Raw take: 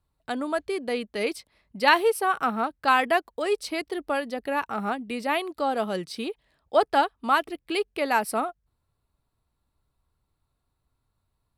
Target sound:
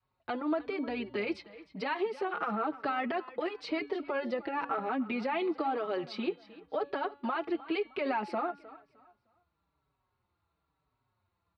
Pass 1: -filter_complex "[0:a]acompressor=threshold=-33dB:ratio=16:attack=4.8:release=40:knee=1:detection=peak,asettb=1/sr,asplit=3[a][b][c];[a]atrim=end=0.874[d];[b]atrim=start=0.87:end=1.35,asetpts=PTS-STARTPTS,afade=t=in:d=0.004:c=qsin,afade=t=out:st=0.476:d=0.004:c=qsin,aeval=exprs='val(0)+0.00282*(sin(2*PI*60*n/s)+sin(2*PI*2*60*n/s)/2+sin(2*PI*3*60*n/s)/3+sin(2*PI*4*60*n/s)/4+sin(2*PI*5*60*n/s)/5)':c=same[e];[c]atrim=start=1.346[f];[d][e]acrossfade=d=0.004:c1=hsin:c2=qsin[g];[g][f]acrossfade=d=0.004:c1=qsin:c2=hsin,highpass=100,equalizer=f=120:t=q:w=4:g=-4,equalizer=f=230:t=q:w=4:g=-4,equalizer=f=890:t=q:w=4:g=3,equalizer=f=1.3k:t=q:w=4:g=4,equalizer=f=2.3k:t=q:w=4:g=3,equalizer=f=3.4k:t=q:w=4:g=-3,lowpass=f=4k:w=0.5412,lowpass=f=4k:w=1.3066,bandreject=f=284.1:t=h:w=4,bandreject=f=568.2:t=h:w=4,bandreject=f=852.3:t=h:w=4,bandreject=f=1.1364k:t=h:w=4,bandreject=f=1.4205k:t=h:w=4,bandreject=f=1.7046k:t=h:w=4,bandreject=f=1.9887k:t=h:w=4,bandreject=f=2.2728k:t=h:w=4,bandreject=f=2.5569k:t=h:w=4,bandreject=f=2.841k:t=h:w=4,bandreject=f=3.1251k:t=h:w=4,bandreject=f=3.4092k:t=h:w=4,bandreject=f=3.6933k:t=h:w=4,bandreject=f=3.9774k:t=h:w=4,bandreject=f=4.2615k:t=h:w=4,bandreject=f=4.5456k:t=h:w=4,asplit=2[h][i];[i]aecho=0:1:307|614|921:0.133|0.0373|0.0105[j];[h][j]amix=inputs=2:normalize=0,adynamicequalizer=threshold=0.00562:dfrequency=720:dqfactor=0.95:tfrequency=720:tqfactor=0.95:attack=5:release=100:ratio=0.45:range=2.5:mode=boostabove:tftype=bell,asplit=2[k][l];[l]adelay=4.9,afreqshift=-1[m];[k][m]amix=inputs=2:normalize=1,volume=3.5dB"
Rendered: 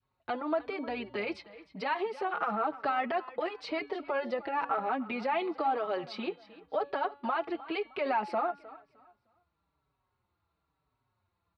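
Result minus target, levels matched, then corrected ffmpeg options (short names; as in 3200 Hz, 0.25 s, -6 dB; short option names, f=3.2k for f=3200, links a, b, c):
250 Hz band -4.0 dB
-filter_complex "[0:a]acompressor=threshold=-33dB:ratio=16:attack=4.8:release=40:knee=1:detection=peak,asettb=1/sr,asplit=3[a][b][c];[a]atrim=end=0.874[d];[b]atrim=start=0.87:end=1.35,asetpts=PTS-STARTPTS,afade=t=in:d=0.004:c=qsin,afade=t=out:st=0.476:d=0.004:c=qsin,aeval=exprs='val(0)+0.00282*(sin(2*PI*60*n/s)+sin(2*PI*2*60*n/s)/2+sin(2*PI*3*60*n/s)/3+sin(2*PI*4*60*n/s)/4+sin(2*PI*5*60*n/s)/5)':c=same[e];[c]atrim=start=1.346[f];[d][e]acrossfade=d=0.004:c1=hsin:c2=qsin[g];[g][f]acrossfade=d=0.004:c1=qsin:c2=hsin,highpass=100,equalizer=f=120:t=q:w=4:g=-4,equalizer=f=230:t=q:w=4:g=-4,equalizer=f=890:t=q:w=4:g=3,equalizer=f=1.3k:t=q:w=4:g=4,equalizer=f=2.3k:t=q:w=4:g=3,equalizer=f=3.4k:t=q:w=4:g=-3,lowpass=f=4k:w=0.5412,lowpass=f=4k:w=1.3066,bandreject=f=284.1:t=h:w=4,bandreject=f=568.2:t=h:w=4,bandreject=f=852.3:t=h:w=4,bandreject=f=1.1364k:t=h:w=4,bandreject=f=1.4205k:t=h:w=4,bandreject=f=1.7046k:t=h:w=4,bandreject=f=1.9887k:t=h:w=4,bandreject=f=2.2728k:t=h:w=4,bandreject=f=2.5569k:t=h:w=4,bandreject=f=2.841k:t=h:w=4,bandreject=f=3.1251k:t=h:w=4,bandreject=f=3.4092k:t=h:w=4,bandreject=f=3.6933k:t=h:w=4,bandreject=f=3.9774k:t=h:w=4,bandreject=f=4.2615k:t=h:w=4,bandreject=f=4.5456k:t=h:w=4,asplit=2[h][i];[i]aecho=0:1:307|614|921:0.133|0.0373|0.0105[j];[h][j]amix=inputs=2:normalize=0,adynamicequalizer=threshold=0.00562:dfrequency=320:dqfactor=0.95:tfrequency=320:tqfactor=0.95:attack=5:release=100:ratio=0.45:range=2.5:mode=boostabove:tftype=bell,asplit=2[k][l];[l]adelay=4.9,afreqshift=-1[m];[k][m]amix=inputs=2:normalize=1,volume=3.5dB"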